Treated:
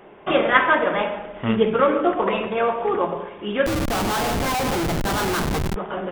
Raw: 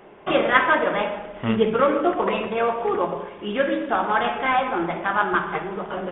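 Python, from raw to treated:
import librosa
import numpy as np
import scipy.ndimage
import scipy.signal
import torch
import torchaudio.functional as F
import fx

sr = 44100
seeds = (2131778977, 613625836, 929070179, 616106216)

y = fx.schmitt(x, sr, flips_db=-25.0, at=(3.66, 5.76))
y = y * librosa.db_to_amplitude(1.0)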